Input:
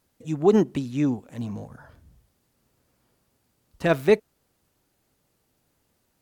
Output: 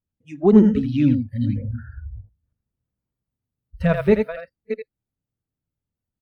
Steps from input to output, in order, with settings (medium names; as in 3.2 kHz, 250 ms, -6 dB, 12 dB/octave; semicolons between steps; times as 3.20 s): chunks repeated in reverse 316 ms, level -10 dB; tone controls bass +15 dB, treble -13 dB; on a send: delay 81 ms -5 dB; on the sum: spectral noise reduction 30 dB; in parallel at +1.5 dB: compression, threshold -30 dBFS, peak gain reduction 22.5 dB; 0.88–1.56 s: on the sum: high-order bell 3.7 kHz +10 dB 1.2 oct; trim -2.5 dB